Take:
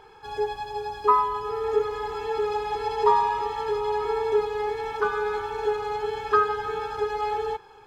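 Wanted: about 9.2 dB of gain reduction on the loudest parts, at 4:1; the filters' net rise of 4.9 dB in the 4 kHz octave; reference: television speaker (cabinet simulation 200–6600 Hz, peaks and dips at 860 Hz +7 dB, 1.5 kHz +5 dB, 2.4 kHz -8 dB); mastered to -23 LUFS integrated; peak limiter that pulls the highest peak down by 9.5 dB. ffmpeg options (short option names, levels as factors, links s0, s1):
-af "equalizer=f=4000:t=o:g=7,acompressor=threshold=0.0562:ratio=4,alimiter=limit=0.0631:level=0:latency=1,highpass=f=200:w=0.5412,highpass=f=200:w=1.3066,equalizer=f=860:t=q:w=4:g=7,equalizer=f=1500:t=q:w=4:g=5,equalizer=f=2400:t=q:w=4:g=-8,lowpass=f=6600:w=0.5412,lowpass=f=6600:w=1.3066,volume=1.88"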